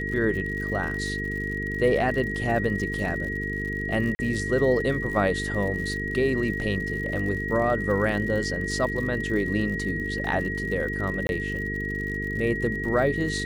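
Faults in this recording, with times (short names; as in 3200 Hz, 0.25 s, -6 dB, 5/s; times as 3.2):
buzz 50 Hz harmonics 9 -32 dBFS
crackle 88/s -34 dBFS
tone 1900 Hz -30 dBFS
4.15–4.19 gap 40 ms
11.27–11.29 gap 21 ms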